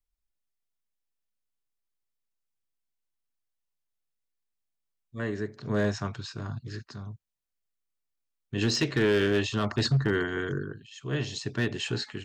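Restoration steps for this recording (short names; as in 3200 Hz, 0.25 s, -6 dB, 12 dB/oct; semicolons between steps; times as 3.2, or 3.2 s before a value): clip repair -18 dBFS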